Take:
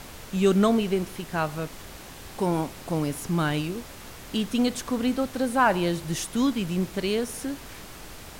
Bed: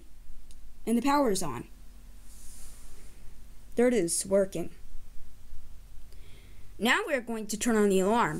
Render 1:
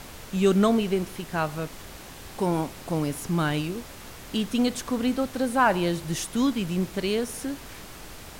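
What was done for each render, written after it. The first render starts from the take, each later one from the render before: no audible change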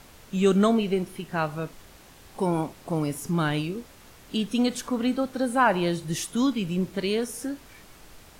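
noise print and reduce 8 dB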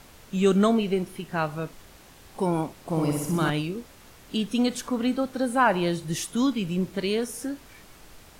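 2.82–3.50 s: flutter echo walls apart 10.6 m, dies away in 0.96 s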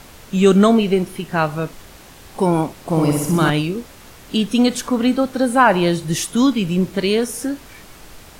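trim +8.5 dB; peak limiter -2 dBFS, peak gain reduction 1 dB

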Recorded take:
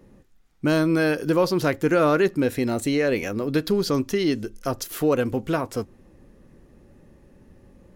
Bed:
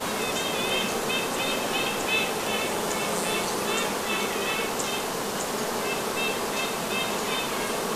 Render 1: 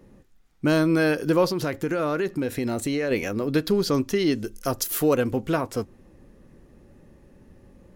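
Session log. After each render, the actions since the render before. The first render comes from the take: 1.51–3.11 s: compression 4:1, threshold -22 dBFS; 4.44–5.16 s: treble shelf 6.5 kHz +9.5 dB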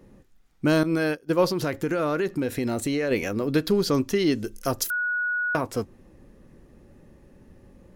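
0.83–1.39 s: expander -17 dBFS; 4.90–5.55 s: bleep 1.46 kHz -23 dBFS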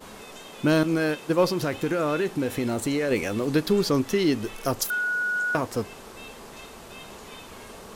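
add bed -15.5 dB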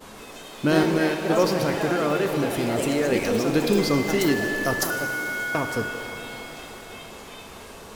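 ever faster or slower copies 161 ms, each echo +3 st, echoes 3, each echo -6 dB; pitch-shifted reverb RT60 3.6 s, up +7 st, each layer -8 dB, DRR 6 dB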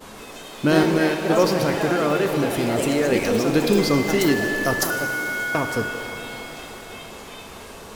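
trim +2.5 dB

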